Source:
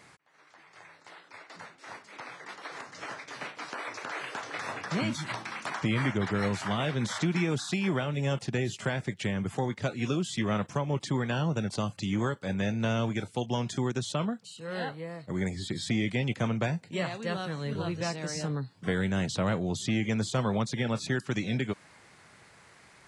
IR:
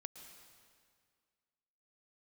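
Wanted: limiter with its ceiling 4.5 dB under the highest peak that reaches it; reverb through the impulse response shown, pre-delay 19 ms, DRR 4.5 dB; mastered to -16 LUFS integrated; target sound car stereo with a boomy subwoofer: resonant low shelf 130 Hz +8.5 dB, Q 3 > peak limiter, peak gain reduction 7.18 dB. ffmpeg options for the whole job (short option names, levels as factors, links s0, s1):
-filter_complex "[0:a]alimiter=limit=0.0794:level=0:latency=1,asplit=2[s0][s1];[1:a]atrim=start_sample=2205,adelay=19[s2];[s1][s2]afir=irnorm=-1:irlink=0,volume=1[s3];[s0][s3]amix=inputs=2:normalize=0,lowshelf=f=130:t=q:w=3:g=8.5,volume=4.22,alimiter=limit=0.531:level=0:latency=1"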